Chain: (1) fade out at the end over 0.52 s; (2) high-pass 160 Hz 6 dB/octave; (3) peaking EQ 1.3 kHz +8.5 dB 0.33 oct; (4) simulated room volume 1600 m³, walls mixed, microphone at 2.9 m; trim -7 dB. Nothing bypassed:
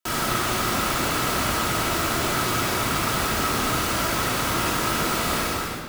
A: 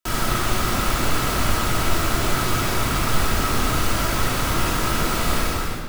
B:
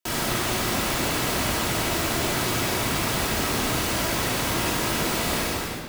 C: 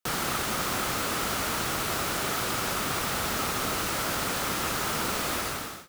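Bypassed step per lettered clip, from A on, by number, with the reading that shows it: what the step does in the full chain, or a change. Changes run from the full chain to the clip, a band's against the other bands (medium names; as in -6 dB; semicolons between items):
2, 125 Hz band +5.0 dB; 3, 1 kHz band -4.0 dB; 4, echo-to-direct 3.5 dB to none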